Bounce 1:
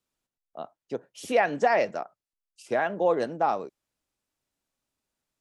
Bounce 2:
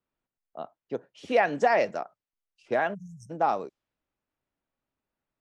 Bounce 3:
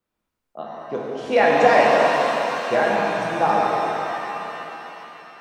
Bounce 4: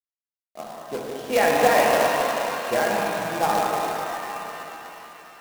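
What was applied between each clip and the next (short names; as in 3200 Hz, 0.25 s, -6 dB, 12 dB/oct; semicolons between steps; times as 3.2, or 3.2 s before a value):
low-pass opened by the level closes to 2200 Hz, open at -24 dBFS; spectral delete 2.94–3.3, 200–5200 Hz
shimmer reverb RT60 3.6 s, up +7 st, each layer -8 dB, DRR -4.5 dB; gain +3.5 dB
companded quantiser 4-bit; gain -3.5 dB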